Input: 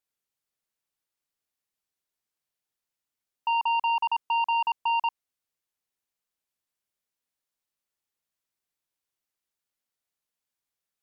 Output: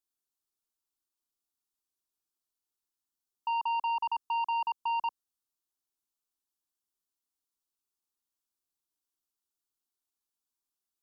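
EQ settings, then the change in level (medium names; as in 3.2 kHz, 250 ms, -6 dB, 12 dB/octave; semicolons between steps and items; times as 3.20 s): peaking EQ 890 Hz -4 dB 0.81 oct; static phaser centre 550 Hz, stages 6; -1.0 dB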